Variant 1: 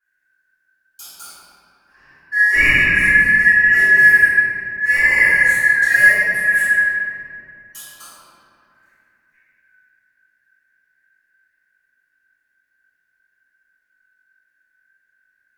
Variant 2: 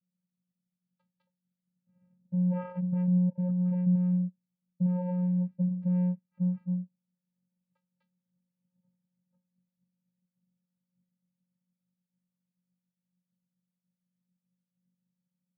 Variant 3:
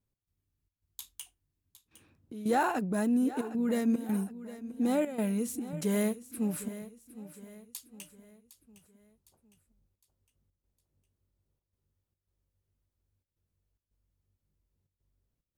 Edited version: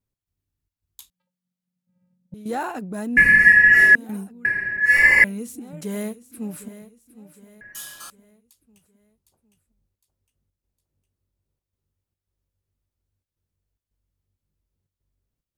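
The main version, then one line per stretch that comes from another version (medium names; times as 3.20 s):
3
1.10–2.34 s: from 2
3.17–3.95 s: from 1
4.45–5.24 s: from 1
7.61–8.10 s: from 1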